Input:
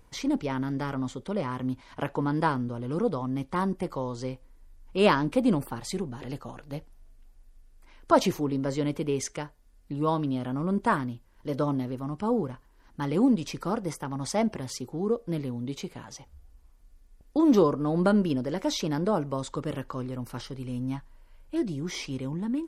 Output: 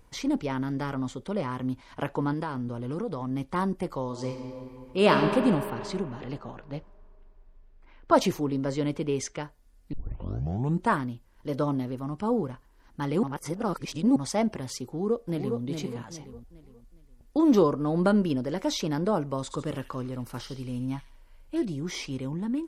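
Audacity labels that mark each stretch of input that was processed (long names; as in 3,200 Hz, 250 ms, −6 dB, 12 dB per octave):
2.330000	3.310000	downward compressor, threshold −27 dBFS
4.030000	5.160000	thrown reverb, RT60 2.8 s, DRR 3 dB
5.700000	9.430000	low-pass that shuts in the quiet parts closes to 2,600 Hz, open at −22 dBFS
9.930000	9.930000	tape start 0.96 s
13.230000	14.160000	reverse
14.860000	15.610000	delay throw 410 ms, feedback 35%, level −5 dB
19.250000	21.650000	delay with a high-pass on its return 74 ms, feedback 46%, high-pass 2,600 Hz, level −7 dB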